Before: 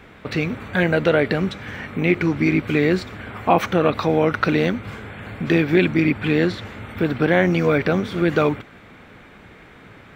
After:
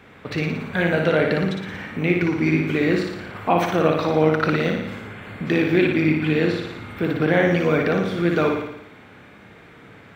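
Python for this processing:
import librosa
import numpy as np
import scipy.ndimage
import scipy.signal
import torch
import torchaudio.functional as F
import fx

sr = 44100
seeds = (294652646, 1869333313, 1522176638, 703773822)

p1 = scipy.signal.sosfilt(scipy.signal.butter(2, 73.0, 'highpass', fs=sr, output='sos'), x)
p2 = p1 + fx.room_flutter(p1, sr, wall_m=9.9, rt60_s=0.83, dry=0)
y = p2 * 10.0 ** (-3.0 / 20.0)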